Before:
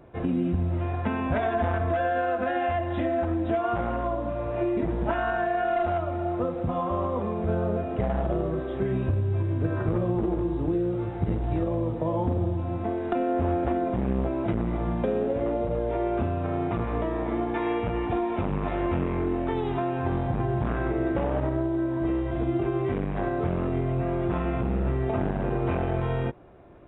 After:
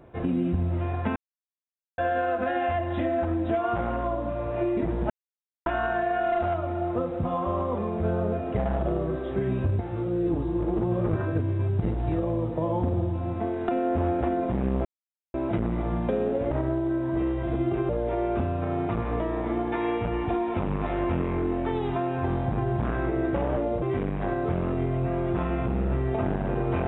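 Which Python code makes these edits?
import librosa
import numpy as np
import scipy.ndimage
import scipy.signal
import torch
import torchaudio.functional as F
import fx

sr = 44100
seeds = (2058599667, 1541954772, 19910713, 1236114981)

y = fx.edit(x, sr, fx.silence(start_s=1.16, length_s=0.82),
    fx.insert_silence(at_s=5.1, length_s=0.56),
    fx.reverse_span(start_s=9.23, length_s=2.0),
    fx.insert_silence(at_s=14.29, length_s=0.49),
    fx.swap(start_s=15.46, length_s=0.25, other_s=21.39, other_length_s=1.38), tone=tone)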